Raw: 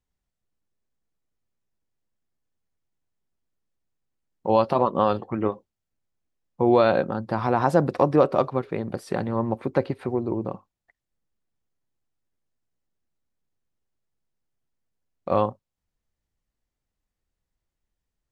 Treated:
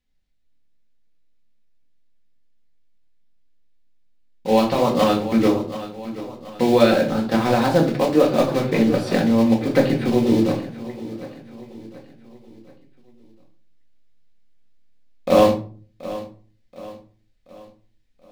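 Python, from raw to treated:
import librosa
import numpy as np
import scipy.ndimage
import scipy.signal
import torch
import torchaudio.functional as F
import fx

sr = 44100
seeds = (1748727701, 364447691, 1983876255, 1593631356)

p1 = fx.block_float(x, sr, bits=5)
p2 = fx.graphic_eq_10(p1, sr, hz=(125, 1000, 2000, 4000), db=(-4, -8, 5, 8))
p3 = p2 + fx.echo_feedback(p2, sr, ms=729, feedback_pct=45, wet_db=-16, dry=0)
p4 = fx.room_shoebox(p3, sr, seeds[0], volume_m3=290.0, walls='furnished', distance_m=2.0)
p5 = fx.rider(p4, sr, range_db=10, speed_s=0.5)
p6 = fx.high_shelf(p5, sr, hz=4100.0, db=-7.0)
y = p6 * librosa.db_to_amplitude(2.5)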